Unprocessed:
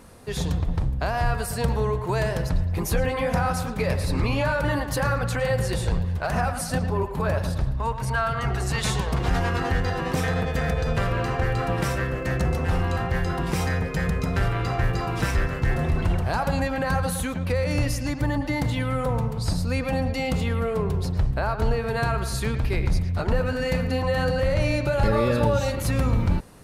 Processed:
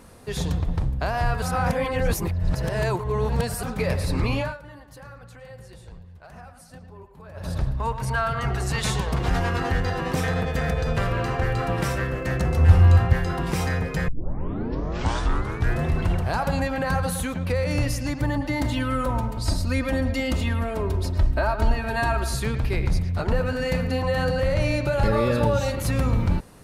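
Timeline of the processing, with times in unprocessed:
0:01.42–0:03.63: reverse
0:04.35–0:07.57: duck −19.5 dB, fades 0.23 s
0:12.57–0:13.13: parametric band 84 Hz +14 dB
0:14.08: tape start 1.75 s
0:18.60–0:22.35: comb filter 3.2 ms, depth 74%

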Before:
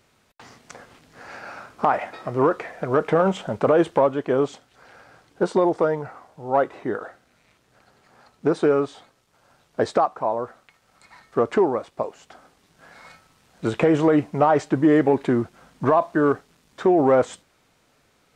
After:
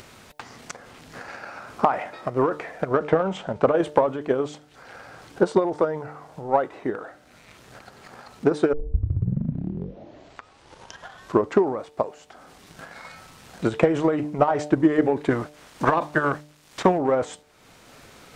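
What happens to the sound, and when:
0:02.91–0:03.74: high-frequency loss of the air 51 metres
0:08.73: tape start 2.99 s
0:15.30–0:16.97: ceiling on every frequency bin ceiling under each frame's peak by 16 dB
whole clip: hum removal 149.1 Hz, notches 6; transient designer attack +10 dB, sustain +6 dB; upward compression, threshold −24 dBFS; level −6.5 dB

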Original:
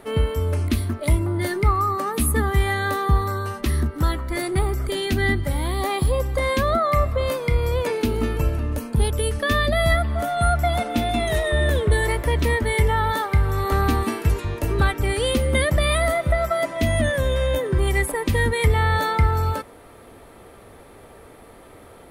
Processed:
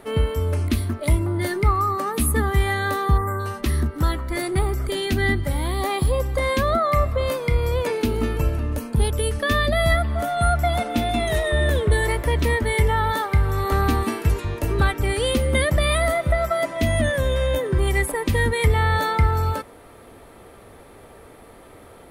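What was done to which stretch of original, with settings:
0:03.17–0:03.40: time-frequency box erased 2,300–6,900 Hz

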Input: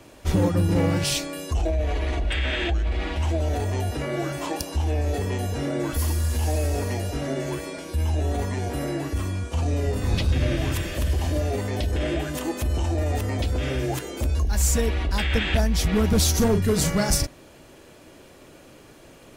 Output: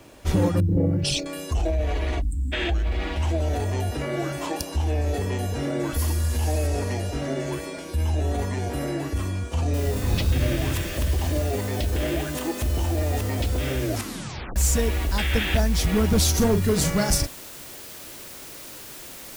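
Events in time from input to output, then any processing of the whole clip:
0:00.60–0:01.26: spectral envelope exaggerated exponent 2
0:02.21–0:02.52: time-frequency box erased 310–6,900 Hz
0:06.67–0:07.52: low-pass filter 11,000 Hz
0:09.74: noise floor change −68 dB −41 dB
0:13.83: tape stop 0.73 s

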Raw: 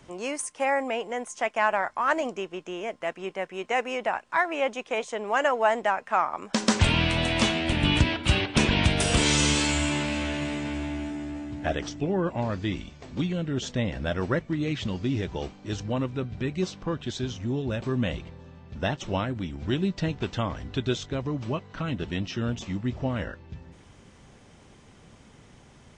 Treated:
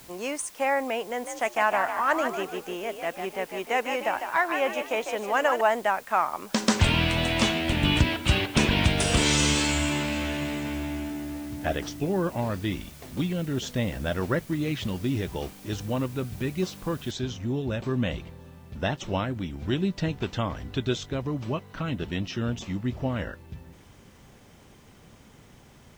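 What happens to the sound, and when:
0:01.07–0:05.61: echo with shifted repeats 151 ms, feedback 40%, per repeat +55 Hz, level −7 dB
0:17.11: noise floor change −51 dB −68 dB

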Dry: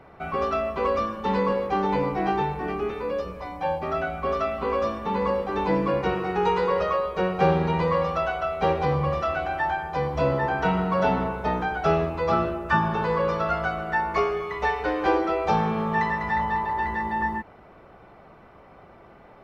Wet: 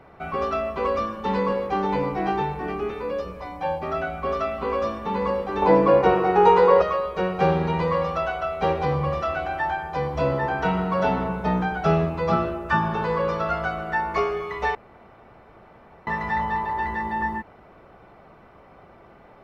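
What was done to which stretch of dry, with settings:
0:05.62–0:06.82: parametric band 650 Hz +9.5 dB 2.2 octaves
0:11.29–0:12.36: parametric band 180 Hz +9 dB 0.43 octaves
0:14.75–0:16.07: fill with room tone

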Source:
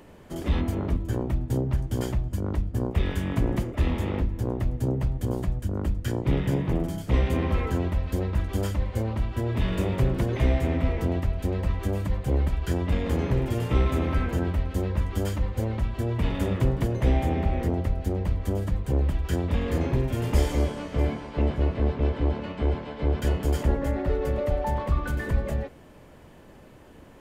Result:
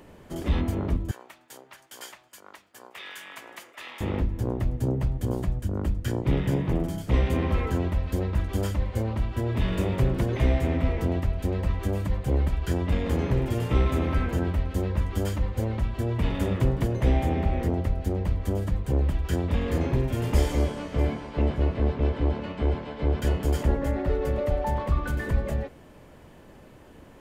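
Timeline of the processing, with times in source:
0:01.11–0:04.01: high-pass filter 1,300 Hz

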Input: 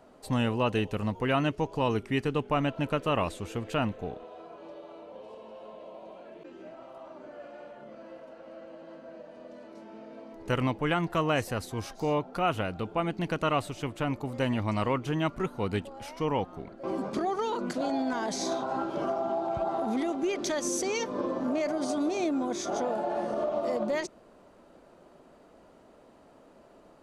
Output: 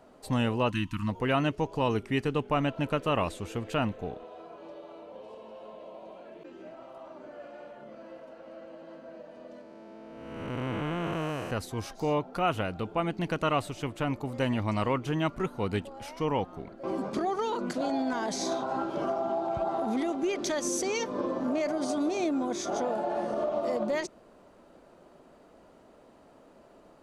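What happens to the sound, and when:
0:00.70–0:01.09: time-frequency box erased 330–890 Hz
0:09.61–0:11.51: spectrum smeared in time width 443 ms

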